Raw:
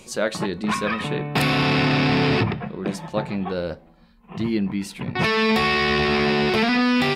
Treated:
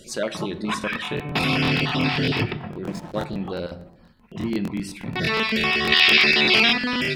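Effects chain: random spectral dropouts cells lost 21%; dynamic EQ 3100 Hz, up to +5 dB, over -38 dBFS, Q 1.2; on a send at -11 dB: reverb RT60 0.65 s, pre-delay 3 ms; 2.84–3.25 on the sum: backlash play -33 dBFS; in parallel at -3 dB: compressor, threshold -30 dBFS, peak gain reduction 14.5 dB; 5.92–6.73 on the sum: weighting filter D; crackling interface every 0.12 s, samples 1024, repeat, from 0.79; gain -4.5 dB

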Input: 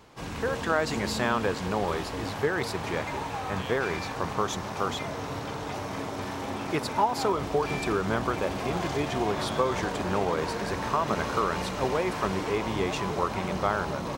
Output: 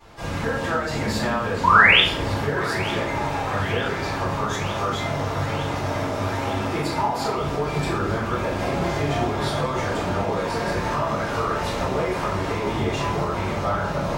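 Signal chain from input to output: compressor 4:1, threshold -29 dBFS, peak gain reduction 9.5 dB; painted sound rise, 1.63–2, 910–3700 Hz -21 dBFS; thinning echo 0.906 s, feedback 76%, level -16.5 dB; shoebox room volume 110 m³, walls mixed, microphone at 3.9 m; gain -6 dB

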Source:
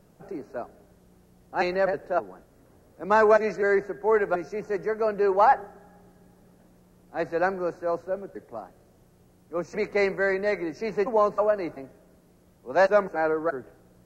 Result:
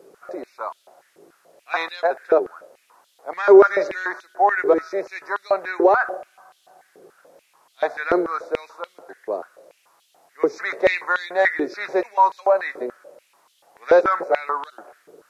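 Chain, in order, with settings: speed mistake 48 kHz file played as 44.1 kHz; maximiser +16.5 dB; stepped high-pass 6.9 Hz 410–3300 Hz; gain -10.5 dB

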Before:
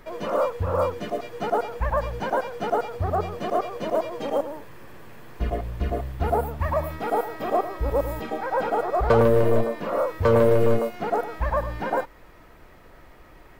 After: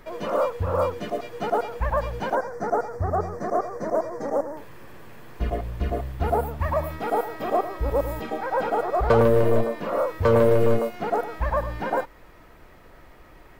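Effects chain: 2.35–4.57 EQ curve 1900 Hz 0 dB, 2900 Hz -29 dB, 5700 Hz +2 dB, 12000 Hz -7 dB

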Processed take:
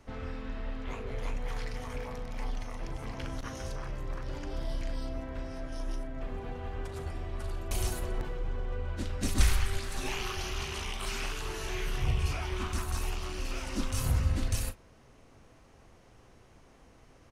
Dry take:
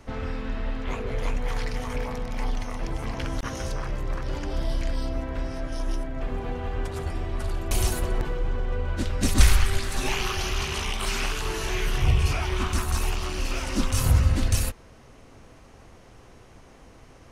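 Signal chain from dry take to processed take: doubler 38 ms -12.5 dB; gain -8 dB

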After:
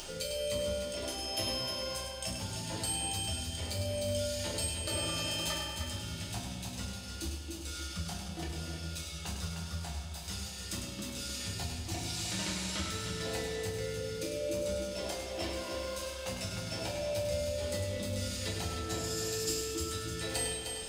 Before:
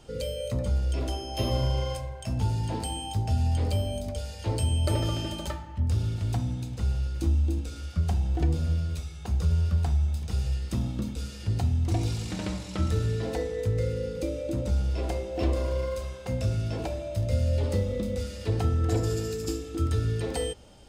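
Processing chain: upward compressor, threshold -32 dBFS; bell 600 Hz +4 dB 0.22 oct; compressor 2:1, threshold -28 dBFS, peak gain reduction 5.5 dB; tilt shelf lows -8 dB, about 1100 Hz; multi-head echo 0.102 s, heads first and third, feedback 48%, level -7 dB; reverb, pre-delay 3 ms, DRR -2 dB; gain -6 dB

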